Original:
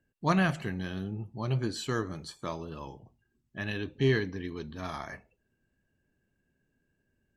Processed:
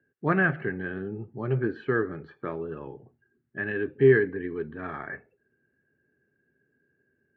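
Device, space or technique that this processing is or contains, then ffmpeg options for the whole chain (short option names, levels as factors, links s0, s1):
bass cabinet: -af "highpass=f=90:w=0.5412,highpass=f=90:w=1.3066,equalizer=f=100:t=q:w=4:g=-7,equalizer=f=190:t=q:w=4:g=-5,equalizer=f=410:t=q:w=4:g=8,equalizer=f=650:t=q:w=4:g=-5,equalizer=f=990:t=q:w=4:g=-9,equalizer=f=1600:t=q:w=4:g=7,lowpass=f=2000:w=0.5412,lowpass=f=2000:w=1.3066,volume=1.5"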